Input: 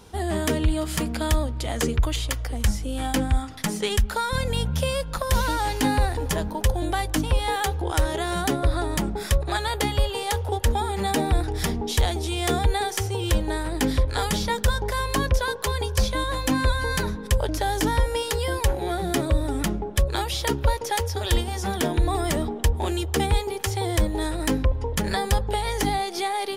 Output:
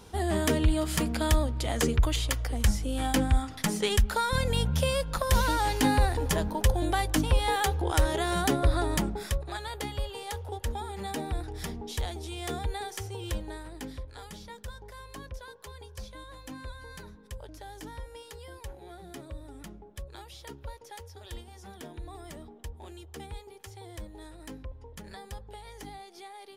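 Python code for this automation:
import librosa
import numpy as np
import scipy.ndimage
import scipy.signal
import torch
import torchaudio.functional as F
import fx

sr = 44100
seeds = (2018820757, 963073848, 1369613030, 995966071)

y = fx.gain(x, sr, db=fx.line((8.95, -2.0), (9.48, -11.0), (13.32, -11.0), (14.12, -20.0)))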